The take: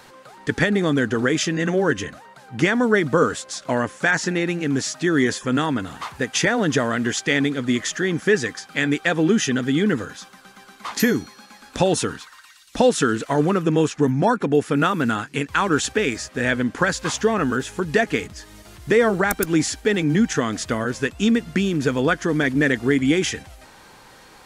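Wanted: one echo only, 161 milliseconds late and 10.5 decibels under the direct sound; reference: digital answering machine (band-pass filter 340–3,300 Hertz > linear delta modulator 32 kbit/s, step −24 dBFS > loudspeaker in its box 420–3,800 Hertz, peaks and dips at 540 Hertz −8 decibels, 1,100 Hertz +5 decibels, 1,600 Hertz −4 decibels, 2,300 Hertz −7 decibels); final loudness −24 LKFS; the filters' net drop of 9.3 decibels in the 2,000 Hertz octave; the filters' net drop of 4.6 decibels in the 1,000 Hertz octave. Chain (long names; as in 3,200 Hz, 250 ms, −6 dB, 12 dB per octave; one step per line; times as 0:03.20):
band-pass filter 340–3,300 Hz
parametric band 1,000 Hz −5.5 dB
parametric band 2,000 Hz −4.5 dB
single-tap delay 161 ms −10.5 dB
linear delta modulator 32 kbit/s, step −24 dBFS
loudspeaker in its box 420–3,800 Hz, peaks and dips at 540 Hz −8 dB, 1,100 Hz +5 dB, 1,600 Hz −4 dB, 2,300 Hz −7 dB
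level +5.5 dB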